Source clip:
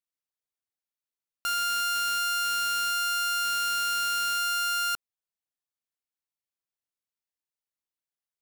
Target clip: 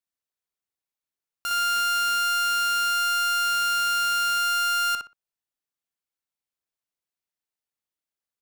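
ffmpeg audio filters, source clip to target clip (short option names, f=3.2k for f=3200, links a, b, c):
-filter_complex "[0:a]asplit=2[a][b];[b]adelay=60,lowpass=f=2.7k:p=1,volume=-3dB,asplit=2[c][d];[d]adelay=60,lowpass=f=2.7k:p=1,volume=0.24,asplit=2[e][f];[f]adelay=60,lowpass=f=2.7k:p=1,volume=0.24[g];[a][c][e][g]amix=inputs=4:normalize=0"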